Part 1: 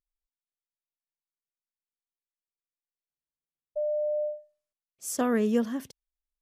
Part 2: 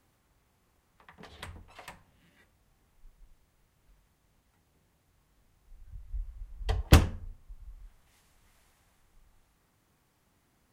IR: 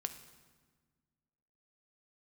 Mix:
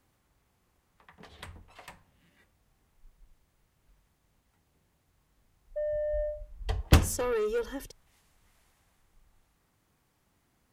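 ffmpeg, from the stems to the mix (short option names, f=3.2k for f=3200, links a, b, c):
-filter_complex "[0:a]aecho=1:1:2.2:0.95,asoftclip=type=tanh:threshold=-23.5dB,adelay=2000,volume=-2dB[a];[1:a]volume=-1.5dB[b];[a][b]amix=inputs=2:normalize=0"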